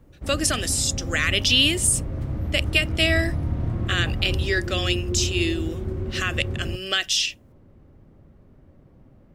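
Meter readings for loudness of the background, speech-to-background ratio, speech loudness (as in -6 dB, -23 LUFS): -29.0 LUFS, 6.0 dB, -23.0 LUFS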